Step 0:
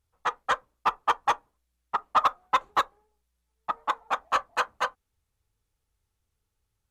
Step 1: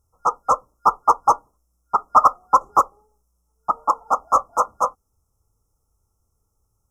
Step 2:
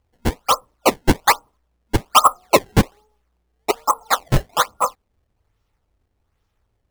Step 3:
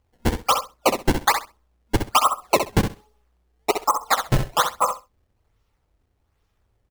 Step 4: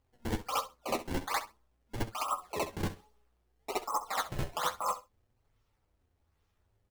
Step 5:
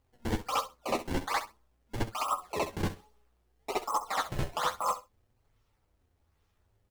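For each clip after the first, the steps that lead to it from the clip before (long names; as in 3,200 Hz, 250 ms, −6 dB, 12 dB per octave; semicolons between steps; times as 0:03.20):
brick-wall band-stop 1,400–5,100 Hz; level +9 dB
sample-and-hold swept by an LFO 21×, swing 160% 1.2 Hz; level +1 dB
downward compressor, threshold −14 dBFS, peak gain reduction 7.5 dB; on a send: repeating echo 65 ms, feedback 16%, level −7.5 dB
compressor whose output falls as the input rises −23 dBFS, ratio −1; flanger 0.55 Hz, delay 7.2 ms, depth 5.6 ms, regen +43%; level −5.5 dB
slew-rate limiting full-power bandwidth 150 Hz; level +2.5 dB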